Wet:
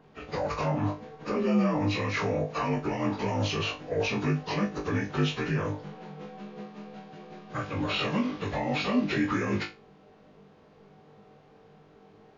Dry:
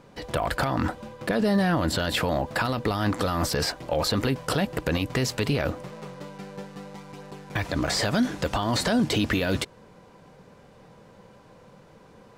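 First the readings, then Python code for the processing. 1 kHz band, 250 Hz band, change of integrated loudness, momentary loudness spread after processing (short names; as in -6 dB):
-3.5 dB, -2.5 dB, -3.5 dB, 16 LU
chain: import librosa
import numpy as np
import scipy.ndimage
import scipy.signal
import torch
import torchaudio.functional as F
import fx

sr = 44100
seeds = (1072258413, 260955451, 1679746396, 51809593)

y = fx.partial_stretch(x, sr, pct=81)
y = fx.room_flutter(y, sr, wall_m=3.4, rt60_s=0.25)
y = y * 10.0 ** (-3.5 / 20.0)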